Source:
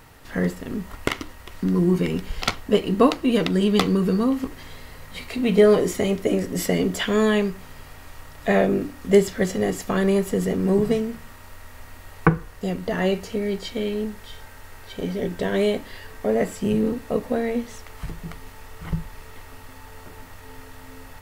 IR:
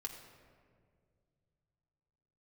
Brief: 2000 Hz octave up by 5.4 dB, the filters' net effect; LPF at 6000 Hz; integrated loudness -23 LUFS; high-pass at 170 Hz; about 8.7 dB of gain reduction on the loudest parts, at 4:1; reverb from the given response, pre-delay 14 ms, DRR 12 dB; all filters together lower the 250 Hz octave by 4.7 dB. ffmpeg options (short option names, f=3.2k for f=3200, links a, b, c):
-filter_complex "[0:a]highpass=170,lowpass=6k,equalizer=f=250:t=o:g=-4.5,equalizer=f=2k:t=o:g=6.5,acompressor=threshold=-24dB:ratio=4,asplit=2[a][b];[1:a]atrim=start_sample=2205,adelay=14[c];[b][c]afir=irnorm=-1:irlink=0,volume=-10dB[d];[a][d]amix=inputs=2:normalize=0,volume=6.5dB"